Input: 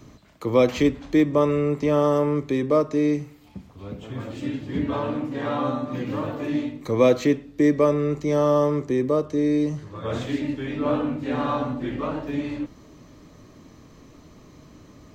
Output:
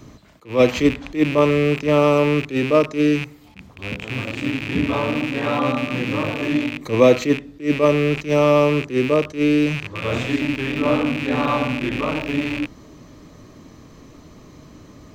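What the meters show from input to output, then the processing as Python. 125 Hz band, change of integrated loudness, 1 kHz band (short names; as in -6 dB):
+4.0 dB, +4.0 dB, +4.0 dB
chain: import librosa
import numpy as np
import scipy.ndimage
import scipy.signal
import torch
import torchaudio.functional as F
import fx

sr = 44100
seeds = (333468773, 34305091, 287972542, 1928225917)

y = fx.rattle_buzz(x, sr, strikes_db=-38.0, level_db=-21.0)
y = fx.attack_slew(y, sr, db_per_s=220.0)
y = F.gain(torch.from_numpy(y), 4.5).numpy()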